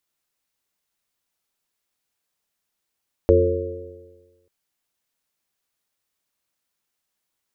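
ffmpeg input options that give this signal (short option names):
-f lavfi -i "aevalsrc='0.15*pow(10,-3*t/1.32)*sin(2*PI*86.82*t)+0.02*pow(10,-3*t/1.32)*sin(2*PI*174.33*t)+0.0422*pow(10,-3*t/1.32)*sin(2*PI*263.24*t)+0.158*pow(10,-3*t/1.32)*sin(2*PI*354.21*t)+0.224*pow(10,-3*t/1.32)*sin(2*PI*447.89*t)+0.15*pow(10,-3*t/1.32)*sin(2*PI*544.9*t)':d=1.19:s=44100"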